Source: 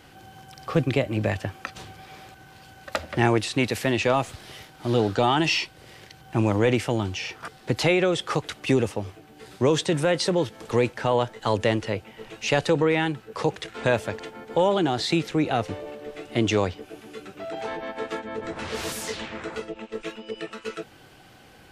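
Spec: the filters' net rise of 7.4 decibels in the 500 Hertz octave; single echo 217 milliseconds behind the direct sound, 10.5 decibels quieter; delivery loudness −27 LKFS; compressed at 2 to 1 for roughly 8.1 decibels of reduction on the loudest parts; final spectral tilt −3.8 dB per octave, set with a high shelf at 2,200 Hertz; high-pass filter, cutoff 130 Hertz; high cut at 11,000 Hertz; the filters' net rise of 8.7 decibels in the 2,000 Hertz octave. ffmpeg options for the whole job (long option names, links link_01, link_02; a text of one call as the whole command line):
ffmpeg -i in.wav -af "highpass=130,lowpass=11000,equalizer=frequency=500:width_type=o:gain=8,equalizer=frequency=2000:width_type=o:gain=7,highshelf=frequency=2200:gain=6,acompressor=threshold=-25dB:ratio=2,aecho=1:1:217:0.299,volume=-1dB" out.wav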